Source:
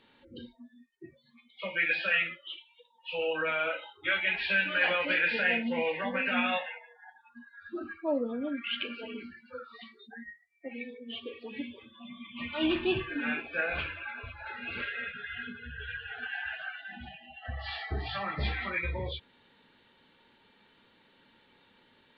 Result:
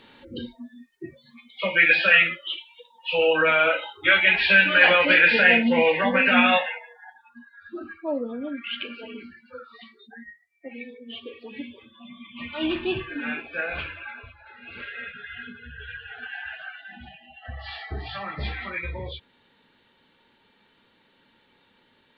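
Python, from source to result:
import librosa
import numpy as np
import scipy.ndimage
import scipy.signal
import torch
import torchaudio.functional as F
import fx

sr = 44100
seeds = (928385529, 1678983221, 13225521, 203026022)

y = fx.gain(x, sr, db=fx.line((6.56, 11.0), (7.57, 2.0), (14.13, 2.0), (14.45, -8.0), (15.0, 1.0)))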